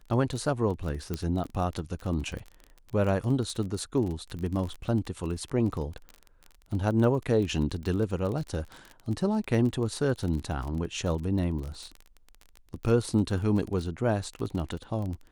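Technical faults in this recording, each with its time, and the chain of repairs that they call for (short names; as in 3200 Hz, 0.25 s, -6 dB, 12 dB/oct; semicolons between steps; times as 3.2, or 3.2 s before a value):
crackle 25/s -33 dBFS
1.14 pop -17 dBFS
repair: de-click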